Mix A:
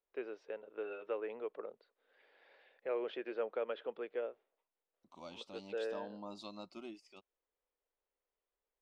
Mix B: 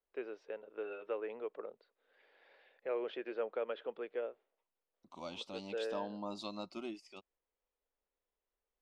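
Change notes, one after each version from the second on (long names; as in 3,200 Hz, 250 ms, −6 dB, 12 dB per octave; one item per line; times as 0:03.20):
second voice +5.0 dB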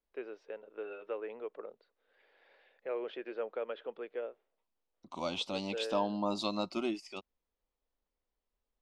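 second voice +9.0 dB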